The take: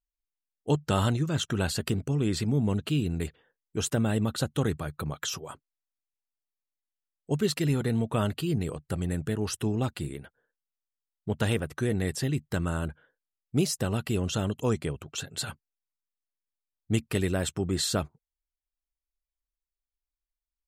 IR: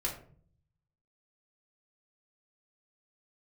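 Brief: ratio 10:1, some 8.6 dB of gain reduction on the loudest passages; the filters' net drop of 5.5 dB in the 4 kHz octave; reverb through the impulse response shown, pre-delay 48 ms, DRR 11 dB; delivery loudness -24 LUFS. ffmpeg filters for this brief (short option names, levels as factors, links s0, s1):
-filter_complex "[0:a]equalizer=f=4000:t=o:g=-7,acompressor=threshold=0.0355:ratio=10,asplit=2[s0][s1];[1:a]atrim=start_sample=2205,adelay=48[s2];[s1][s2]afir=irnorm=-1:irlink=0,volume=0.188[s3];[s0][s3]amix=inputs=2:normalize=0,volume=3.55"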